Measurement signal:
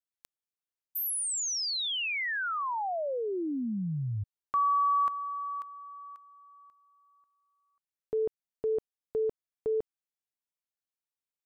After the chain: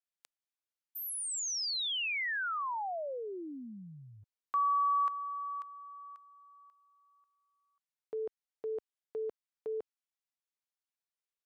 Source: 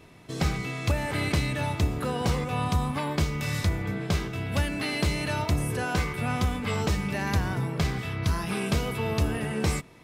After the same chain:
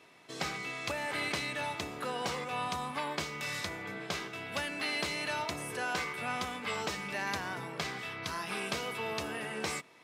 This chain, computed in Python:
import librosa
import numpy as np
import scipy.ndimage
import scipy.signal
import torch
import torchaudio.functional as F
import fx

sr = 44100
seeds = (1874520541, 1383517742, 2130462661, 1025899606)

y = fx.weighting(x, sr, curve='A')
y = y * 10.0 ** (-3.5 / 20.0)